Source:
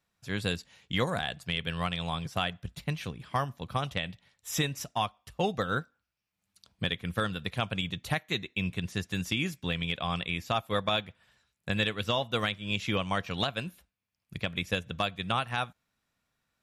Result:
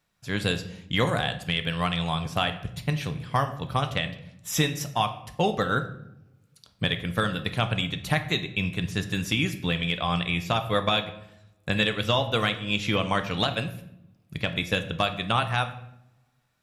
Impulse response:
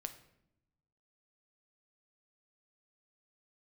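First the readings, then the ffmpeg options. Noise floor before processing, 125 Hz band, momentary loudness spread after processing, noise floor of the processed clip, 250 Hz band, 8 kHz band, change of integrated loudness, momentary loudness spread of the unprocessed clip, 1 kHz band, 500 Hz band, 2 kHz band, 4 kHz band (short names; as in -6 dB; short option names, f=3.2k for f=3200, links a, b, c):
-84 dBFS, +6.0 dB, 7 LU, -66 dBFS, +5.5 dB, +5.0 dB, +5.0 dB, 6 LU, +5.0 dB, +5.0 dB, +5.0 dB, +5.0 dB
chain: -filter_complex "[1:a]atrim=start_sample=2205[a];[0:a][a]afir=irnorm=-1:irlink=0,volume=8dB"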